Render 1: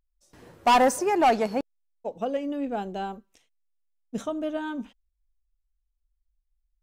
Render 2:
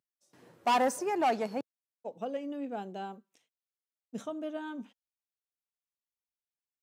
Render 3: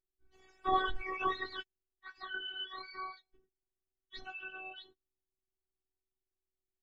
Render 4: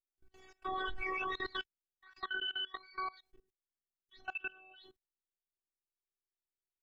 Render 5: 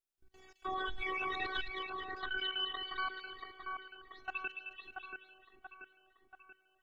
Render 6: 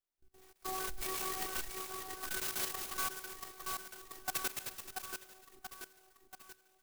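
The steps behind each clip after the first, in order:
high-pass 120 Hz 24 dB/octave; trim -7.5 dB
spectrum inverted on a logarithmic axis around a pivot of 920 Hz; robot voice 378 Hz
level held to a coarse grid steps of 22 dB; trim +7 dB
two-band feedback delay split 2.2 kHz, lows 683 ms, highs 215 ms, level -4 dB
gain riding within 4 dB 2 s; sampling jitter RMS 0.12 ms

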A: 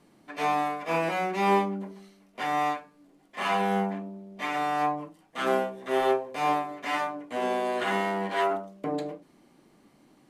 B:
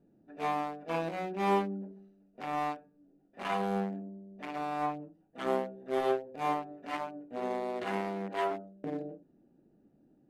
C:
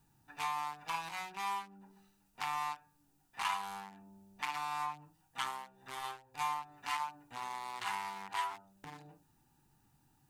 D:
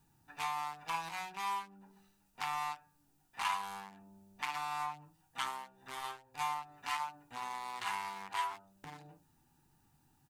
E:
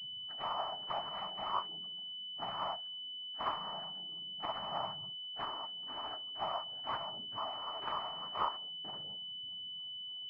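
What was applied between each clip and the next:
local Wiener filter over 41 samples; trim -4 dB
compression 6:1, threshold -41 dBFS, peak gain reduction 17 dB; FFT filter 130 Hz 0 dB, 190 Hz -16 dB, 620 Hz -21 dB, 890 Hz +9 dB, 1.5 kHz +2 dB, 8 kHz +14 dB; trim +5 dB
doubling 12 ms -13 dB
phaser 0.42 Hz, delay 4.5 ms, feedback 51%; noise-vocoded speech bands 12; class-D stage that switches slowly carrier 3 kHz

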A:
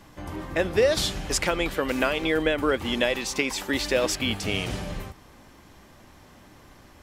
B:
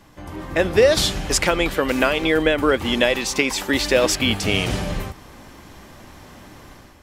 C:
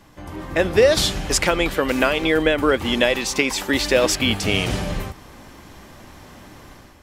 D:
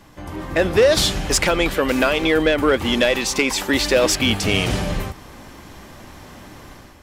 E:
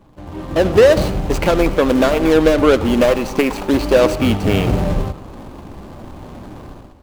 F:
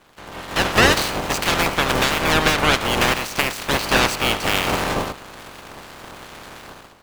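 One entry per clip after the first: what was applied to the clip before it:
level rider gain up to 8.5 dB
no audible change
saturation -9.5 dBFS, distortion -17 dB; trim +2.5 dB
median filter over 25 samples; reverberation RT60 0.70 s, pre-delay 35 ms, DRR 15.5 dB; level rider gain up to 7.5 dB
spectral peaks clipped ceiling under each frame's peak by 26 dB; trim -5 dB

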